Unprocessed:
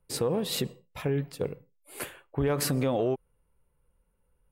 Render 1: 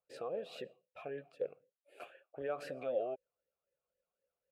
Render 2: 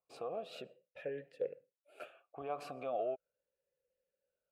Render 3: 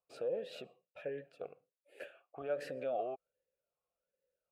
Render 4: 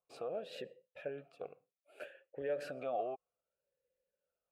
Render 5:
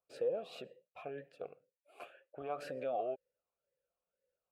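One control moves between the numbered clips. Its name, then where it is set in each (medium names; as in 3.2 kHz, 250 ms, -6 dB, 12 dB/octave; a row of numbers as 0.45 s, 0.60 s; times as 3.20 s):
talking filter, rate: 3.9 Hz, 0.39 Hz, 1.3 Hz, 0.64 Hz, 2 Hz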